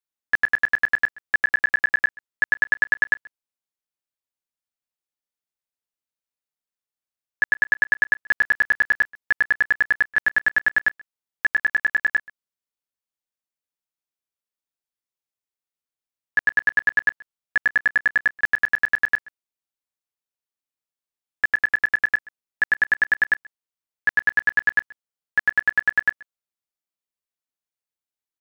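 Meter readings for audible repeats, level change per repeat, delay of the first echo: 1, no steady repeat, 0.131 s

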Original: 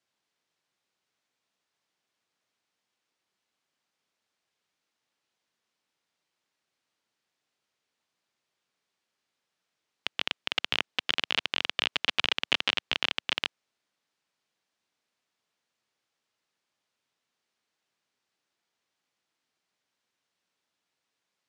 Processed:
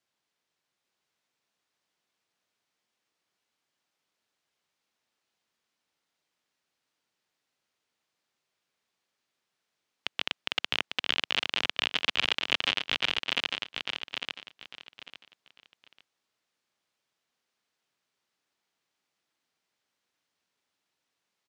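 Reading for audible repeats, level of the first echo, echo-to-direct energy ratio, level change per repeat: 3, -5.0 dB, -4.5 dB, -12.5 dB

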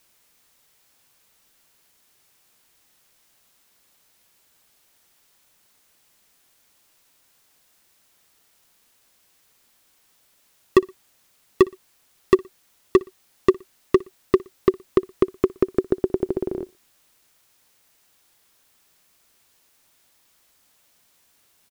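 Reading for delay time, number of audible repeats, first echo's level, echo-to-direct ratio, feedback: 60 ms, 2, -24.0 dB, -23.5 dB, 38%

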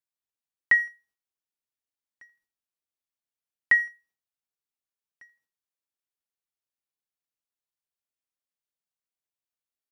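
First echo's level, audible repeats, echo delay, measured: -22.5 dB, 2, 82 ms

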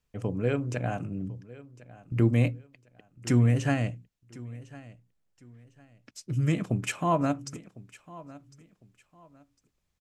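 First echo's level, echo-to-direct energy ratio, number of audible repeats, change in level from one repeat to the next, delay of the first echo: -19.5 dB, -19.0 dB, 2, -11.0 dB, 1.054 s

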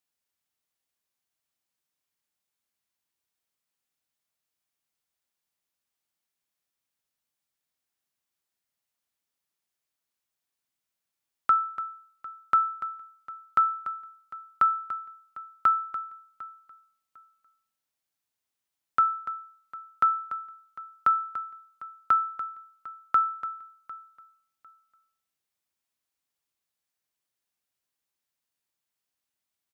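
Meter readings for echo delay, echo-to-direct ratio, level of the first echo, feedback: 0.751 s, -19.5 dB, -19.5 dB, 22%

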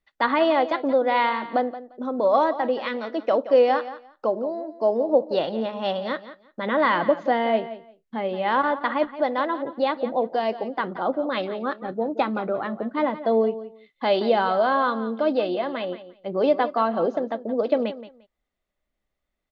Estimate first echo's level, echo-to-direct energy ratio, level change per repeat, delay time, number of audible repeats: -14.0 dB, -14.0 dB, -15.0 dB, 0.174 s, 2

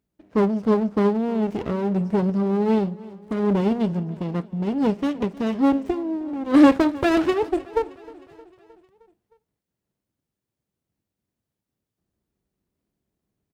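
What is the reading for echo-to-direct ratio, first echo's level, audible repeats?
-19.0 dB, -21.0 dB, 4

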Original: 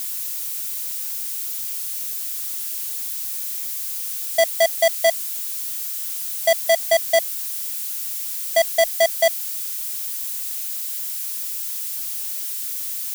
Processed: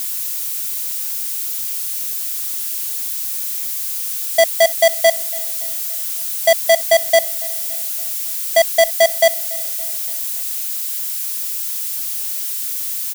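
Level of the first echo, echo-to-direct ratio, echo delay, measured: -22.5 dB, -21.0 dB, 0.284 s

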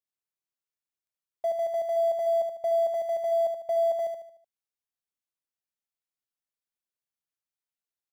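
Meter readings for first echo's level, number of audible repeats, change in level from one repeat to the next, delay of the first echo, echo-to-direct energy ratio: -6.0 dB, 4, -7.5 dB, 75 ms, -5.0 dB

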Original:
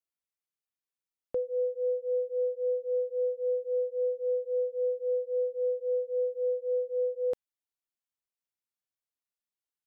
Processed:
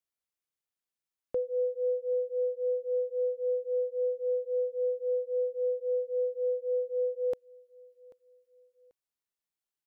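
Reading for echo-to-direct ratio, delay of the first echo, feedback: -22.0 dB, 0.788 s, 31%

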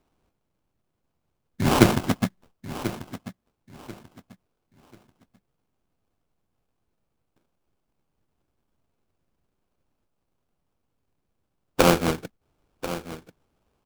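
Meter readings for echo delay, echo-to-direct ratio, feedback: 1.039 s, -13.0 dB, 26%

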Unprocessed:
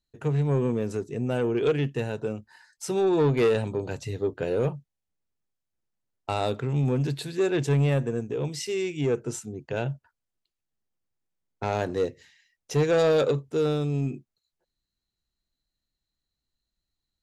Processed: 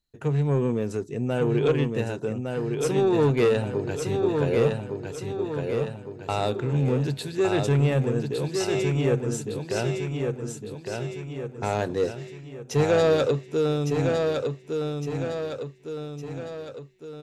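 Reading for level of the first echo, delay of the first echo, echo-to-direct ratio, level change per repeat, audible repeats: -4.5 dB, 1.159 s, -3.0 dB, -6.0 dB, 6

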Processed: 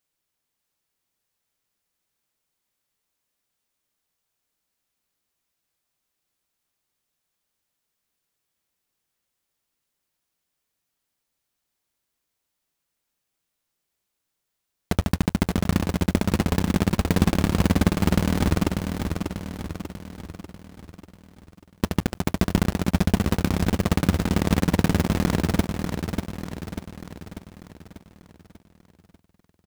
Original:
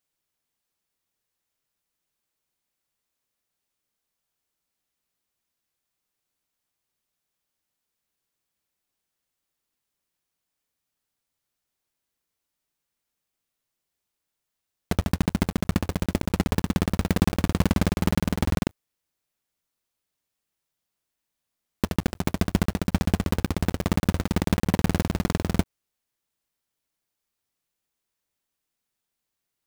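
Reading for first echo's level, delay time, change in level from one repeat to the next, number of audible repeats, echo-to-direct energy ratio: -6.0 dB, 0.592 s, -5.5 dB, 6, -4.5 dB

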